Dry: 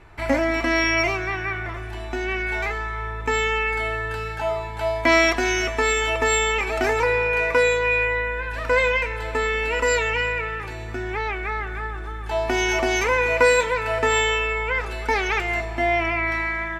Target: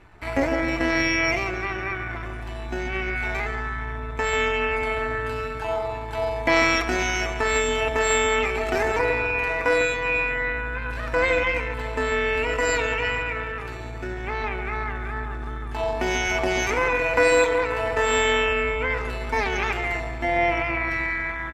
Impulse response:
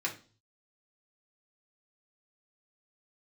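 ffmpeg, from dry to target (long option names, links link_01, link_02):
-filter_complex "[0:a]asplit=2[link_01][link_02];[link_02]adelay=107,lowpass=frequency=1600:poles=1,volume=-6.5dB,asplit=2[link_03][link_04];[link_04]adelay=107,lowpass=frequency=1600:poles=1,volume=0.47,asplit=2[link_05][link_06];[link_06]adelay=107,lowpass=frequency=1600:poles=1,volume=0.47,asplit=2[link_07][link_08];[link_08]adelay=107,lowpass=frequency=1600:poles=1,volume=0.47,asplit=2[link_09][link_10];[link_10]adelay=107,lowpass=frequency=1600:poles=1,volume=0.47,asplit=2[link_11][link_12];[link_12]adelay=107,lowpass=frequency=1600:poles=1,volume=0.47[link_13];[link_01][link_03][link_05][link_07][link_09][link_11][link_13]amix=inputs=7:normalize=0,tremolo=f=190:d=0.571,atempo=0.78"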